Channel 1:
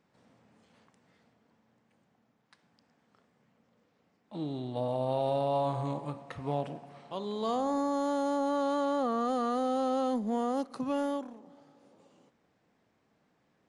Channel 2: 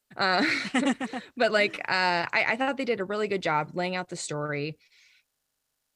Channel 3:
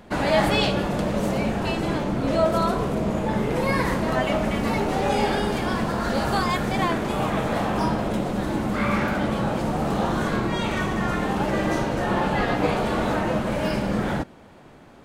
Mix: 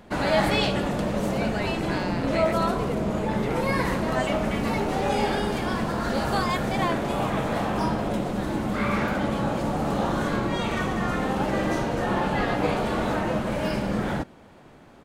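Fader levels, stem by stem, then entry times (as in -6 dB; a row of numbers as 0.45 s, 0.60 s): -5.5 dB, -10.5 dB, -2.0 dB; 1.55 s, 0.00 s, 0.00 s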